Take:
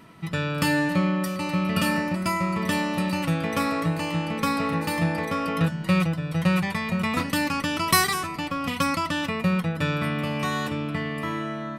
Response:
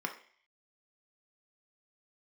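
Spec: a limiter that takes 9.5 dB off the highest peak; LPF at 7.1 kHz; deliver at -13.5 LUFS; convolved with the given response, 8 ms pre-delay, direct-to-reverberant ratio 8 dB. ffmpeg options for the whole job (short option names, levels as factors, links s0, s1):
-filter_complex "[0:a]lowpass=7100,alimiter=limit=0.141:level=0:latency=1,asplit=2[s0][s1];[1:a]atrim=start_sample=2205,adelay=8[s2];[s1][s2]afir=irnorm=-1:irlink=0,volume=0.266[s3];[s0][s3]amix=inputs=2:normalize=0,volume=3.98"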